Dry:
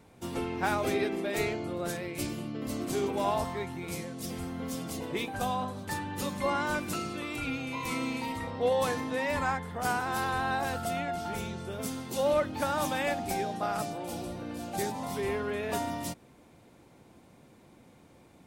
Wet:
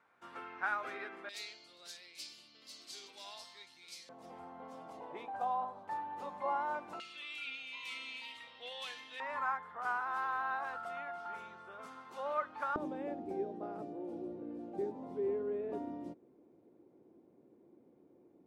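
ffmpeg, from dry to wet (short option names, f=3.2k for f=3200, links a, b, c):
-af "asetnsamples=n=441:p=0,asendcmd='1.29 bandpass f 4500;4.09 bandpass f 840;7 bandpass f 3100;9.2 bandpass f 1200;12.76 bandpass f 360',bandpass=f=1.4k:t=q:w=2.9:csg=0"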